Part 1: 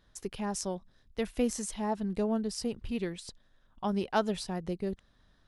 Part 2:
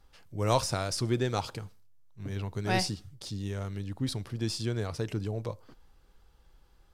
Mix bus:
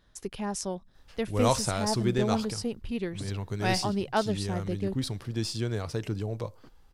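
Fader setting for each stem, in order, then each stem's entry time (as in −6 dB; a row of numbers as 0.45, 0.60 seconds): +1.5, +1.0 decibels; 0.00, 0.95 seconds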